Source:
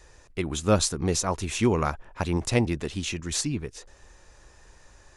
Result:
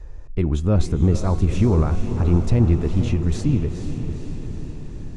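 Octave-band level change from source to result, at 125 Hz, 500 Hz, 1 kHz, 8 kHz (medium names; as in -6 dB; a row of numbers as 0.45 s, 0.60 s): +11.5 dB, +1.5 dB, -2.5 dB, -12.0 dB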